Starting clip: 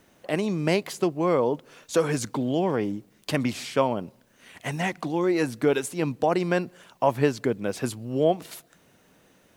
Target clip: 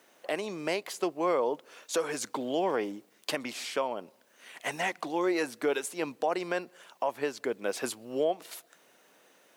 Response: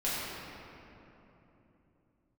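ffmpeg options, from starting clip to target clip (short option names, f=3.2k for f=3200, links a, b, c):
-af "highpass=420,alimiter=limit=-18dB:level=0:latency=1:release=461"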